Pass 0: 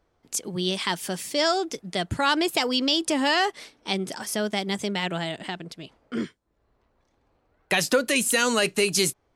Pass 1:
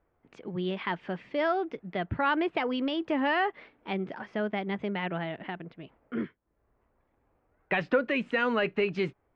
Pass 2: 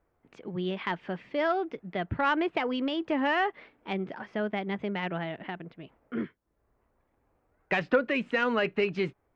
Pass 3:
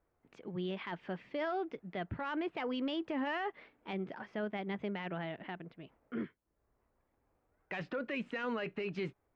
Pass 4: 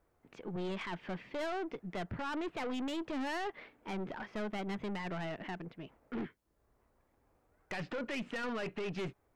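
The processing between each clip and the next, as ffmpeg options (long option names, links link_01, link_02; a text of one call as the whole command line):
ffmpeg -i in.wav -af "lowpass=frequency=2400:width=0.5412,lowpass=frequency=2400:width=1.3066,volume=-3.5dB" out.wav
ffmpeg -i in.wav -af "aeval=exprs='0.2*(cos(1*acos(clip(val(0)/0.2,-1,1)))-cos(1*PI/2))+0.0158*(cos(3*acos(clip(val(0)/0.2,-1,1)))-cos(3*PI/2))':channel_layout=same,volume=2dB" out.wav
ffmpeg -i in.wav -af "alimiter=limit=-23.5dB:level=0:latency=1:release=11,volume=-5.5dB" out.wav
ffmpeg -i in.wav -af "aeval=exprs='(tanh(100*val(0)+0.3)-tanh(0.3))/100':channel_layout=same,volume=5.5dB" out.wav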